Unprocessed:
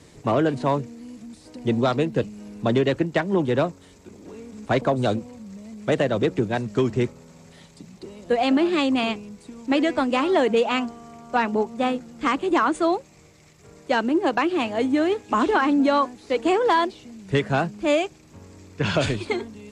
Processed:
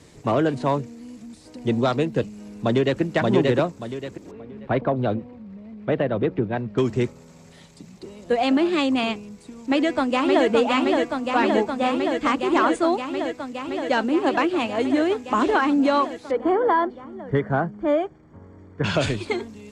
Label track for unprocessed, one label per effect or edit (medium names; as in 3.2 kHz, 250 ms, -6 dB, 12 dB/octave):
2.380000	3.010000	echo throw 580 ms, feedback 30%, level -1 dB
4.310000	6.780000	distance through air 390 m
9.660000	10.460000	echo throw 570 ms, feedback 85%, level -3 dB
16.310000	18.840000	Savitzky-Golay filter over 41 samples